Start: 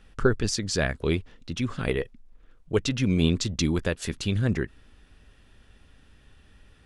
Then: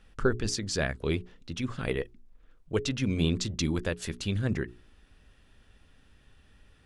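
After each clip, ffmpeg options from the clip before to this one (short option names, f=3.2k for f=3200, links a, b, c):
-af "bandreject=f=60:t=h:w=6,bandreject=f=120:t=h:w=6,bandreject=f=180:t=h:w=6,bandreject=f=240:t=h:w=6,bandreject=f=300:t=h:w=6,bandreject=f=360:t=h:w=6,bandreject=f=420:t=h:w=6,volume=-3.5dB"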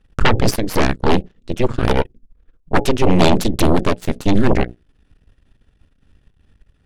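-af "lowshelf=f=470:g=10,aeval=exprs='0.531*(cos(1*acos(clip(val(0)/0.531,-1,1)))-cos(1*PI/2))+0.266*(cos(6*acos(clip(val(0)/0.531,-1,1)))-cos(6*PI/2))+0.0596*(cos(7*acos(clip(val(0)/0.531,-1,1)))-cos(7*PI/2))':c=same,aeval=exprs='0.891*sin(PI/2*2.24*val(0)/0.891)':c=same,volume=-3.5dB"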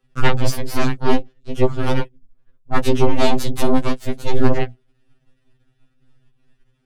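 -af "afftfilt=real='re*2.45*eq(mod(b,6),0)':imag='im*2.45*eq(mod(b,6),0)':win_size=2048:overlap=0.75,volume=-1.5dB"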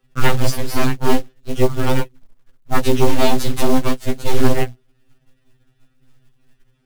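-filter_complex "[0:a]asplit=2[a][b];[b]alimiter=limit=-9.5dB:level=0:latency=1:release=205,volume=-2.5dB[c];[a][c]amix=inputs=2:normalize=0,acrusher=bits=6:mode=log:mix=0:aa=0.000001,volume=-2dB"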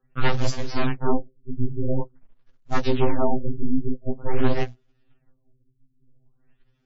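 -af "afftfilt=real='re*lt(b*sr/1024,370*pow(7600/370,0.5+0.5*sin(2*PI*0.47*pts/sr)))':imag='im*lt(b*sr/1024,370*pow(7600/370,0.5+0.5*sin(2*PI*0.47*pts/sr)))':win_size=1024:overlap=0.75,volume=-6dB"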